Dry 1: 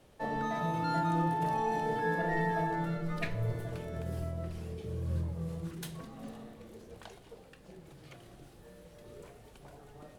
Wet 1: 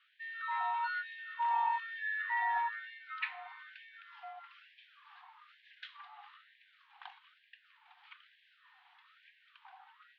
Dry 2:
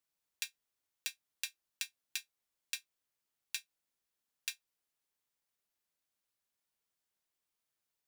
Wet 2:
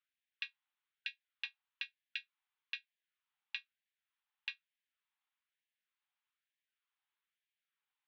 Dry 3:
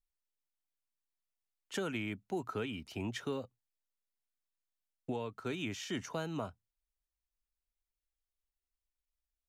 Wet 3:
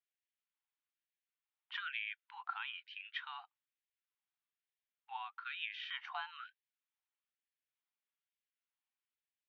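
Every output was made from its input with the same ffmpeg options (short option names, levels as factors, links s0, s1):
-af "highpass=f=230:t=q:w=0.5412,highpass=f=230:t=q:w=1.307,lowpass=f=3500:t=q:w=0.5176,lowpass=f=3500:t=q:w=0.7071,lowpass=f=3500:t=q:w=1.932,afreqshift=57,afftfilt=real='re*gte(b*sr/1024,690*pow(1600/690,0.5+0.5*sin(2*PI*1.1*pts/sr)))':imag='im*gte(b*sr/1024,690*pow(1600/690,0.5+0.5*sin(2*PI*1.1*pts/sr)))':win_size=1024:overlap=0.75,volume=1.26"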